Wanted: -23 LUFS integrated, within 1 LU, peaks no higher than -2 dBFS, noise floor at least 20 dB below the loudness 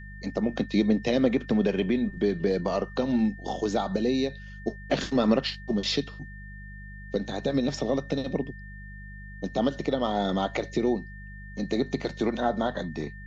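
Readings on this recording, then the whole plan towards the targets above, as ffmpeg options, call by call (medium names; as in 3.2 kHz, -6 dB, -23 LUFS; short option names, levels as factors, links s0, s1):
hum 50 Hz; highest harmonic 200 Hz; hum level -40 dBFS; steady tone 1.8 kHz; tone level -46 dBFS; loudness -28.0 LUFS; peak level -9.0 dBFS; loudness target -23.0 LUFS
-> -af "bandreject=f=50:t=h:w=4,bandreject=f=100:t=h:w=4,bandreject=f=150:t=h:w=4,bandreject=f=200:t=h:w=4"
-af "bandreject=f=1800:w=30"
-af "volume=1.78"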